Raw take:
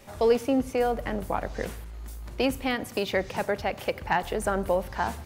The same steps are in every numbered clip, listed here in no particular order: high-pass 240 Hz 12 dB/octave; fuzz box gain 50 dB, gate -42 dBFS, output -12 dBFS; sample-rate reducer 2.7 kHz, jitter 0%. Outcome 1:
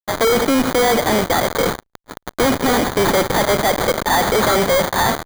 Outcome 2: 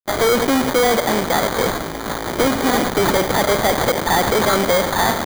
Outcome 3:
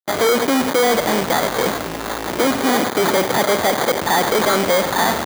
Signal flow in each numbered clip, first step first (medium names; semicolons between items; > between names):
high-pass > fuzz box > sample-rate reducer; fuzz box > high-pass > sample-rate reducer; fuzz box > sample-rate reducer > high-pass